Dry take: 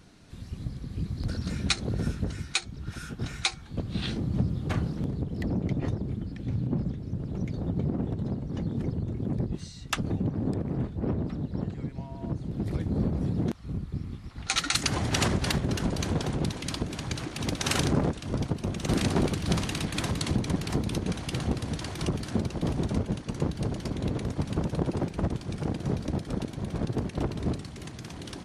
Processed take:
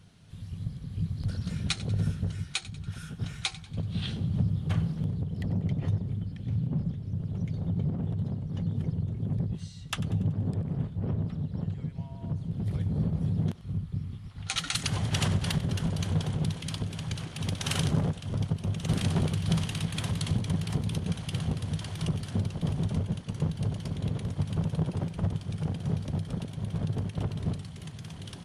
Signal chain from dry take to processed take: thirty-one-band EQ 100 Hz +12 dB, 160 Hz +10 dB, 315 Hz -8 dB, 3150 Hz +7 dB, 10000 Hz +6 dB; on a send: thinning echo 95 ms, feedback 50%, level -17 dB; on the sum: gain -6 dB

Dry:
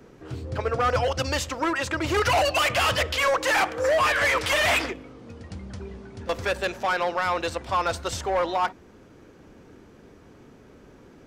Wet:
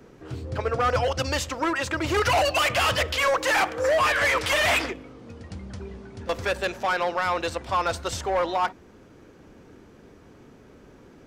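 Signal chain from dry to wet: 1.75–3.69 crackle 330/s -49 dBFS

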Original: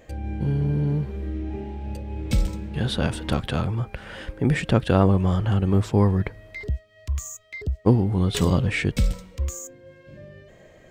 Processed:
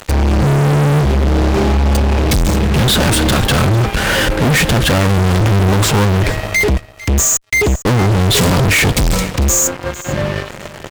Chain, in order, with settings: high shelf 5200 Hz +5 dB; fuzz box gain 43 dB, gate -46 dBFS; on a send: echo 0.451 s -18 dB; on the sum: gain +2.5 dB

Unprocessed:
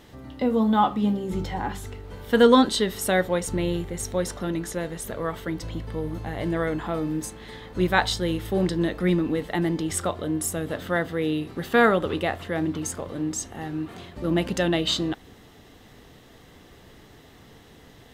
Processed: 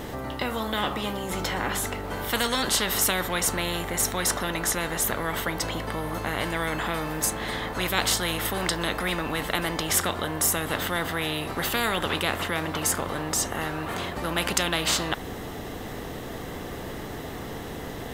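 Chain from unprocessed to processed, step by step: bell 4000 Hz -7.5 dB 2.3 oct; spectral compressor 4:1; gain -1 dB

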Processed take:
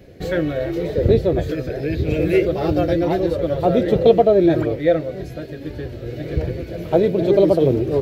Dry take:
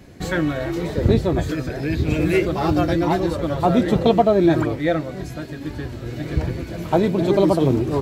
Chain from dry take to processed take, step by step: ten-band EQ 250 Hz -5 dB, 500 Hz +10 dB, 1000 Hz -11 dB, 8000 Hz -10 dB

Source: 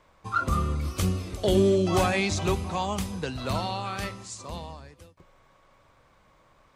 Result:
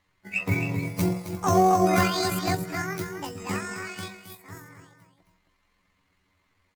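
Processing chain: delay-line pitch shifter +11 st; low shelf 190 Hz +4 dB; on a send: echo 0.267 s -7 dB; on the sum: upward expander 1.5:1, over -43 dBFS; gain +2 dB

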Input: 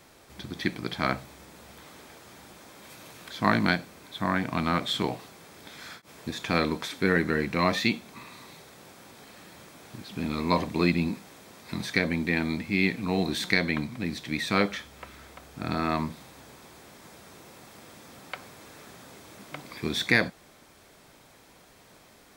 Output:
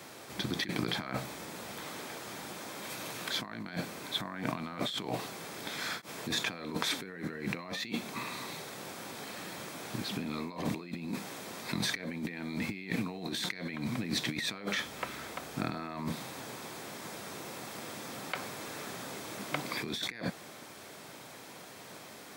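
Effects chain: HPF 92 Hz 24 dB/oct; low shelf 120 Hz -5.5 dB; negative-ratio compressor -37 dBFS, ratio -1

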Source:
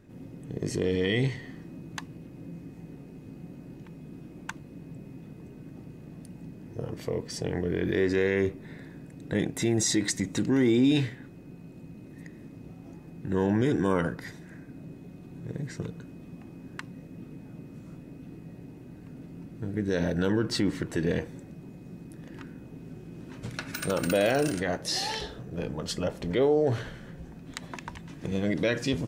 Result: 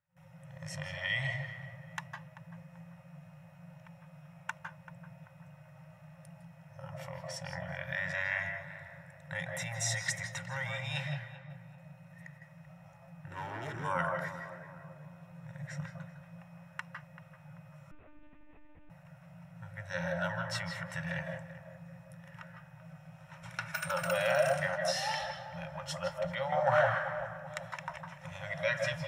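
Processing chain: gate with hold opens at -38 dBFS; FFT band-reject 180–520 Hz; 13.26–13.84 hard clip -34 dBFS, distortion -20 dB; 26.52–27.27 bell 1200 Hz +15 dB 2 oct; darkening echo 0.387 s, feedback 49%, low-pass 1200 Hz, level -11 dB; reverb RT60 0.25 s, pre-delay 0.153 s, DRR 4 dB; 17.91–18.9 monotone LPC vocoder at 8 kHz 300 Hz; gain -6.5 dB

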